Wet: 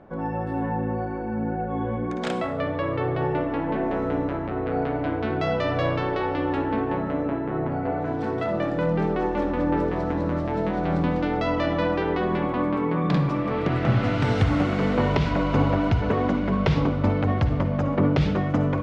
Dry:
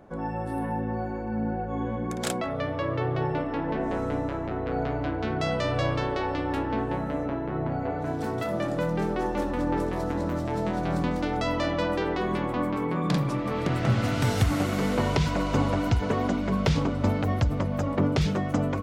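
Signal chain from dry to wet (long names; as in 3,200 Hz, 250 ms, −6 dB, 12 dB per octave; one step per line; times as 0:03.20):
low-pass filter 3,200 Hz 12 dB per octave
mains-hum notches 60/120 Hz
on a send: convolution reverb RT60 0.65 s, pre-delay 48 ms, DRR 9.5 dB
on the sum: level +2.5 dB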